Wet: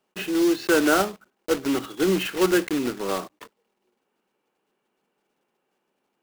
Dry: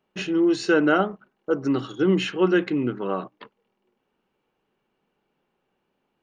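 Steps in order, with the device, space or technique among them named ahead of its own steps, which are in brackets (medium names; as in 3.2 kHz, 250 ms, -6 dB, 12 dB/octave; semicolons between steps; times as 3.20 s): early digital voice recorder (band-pass 220–3800 Hz; block-companded coder 3-bit)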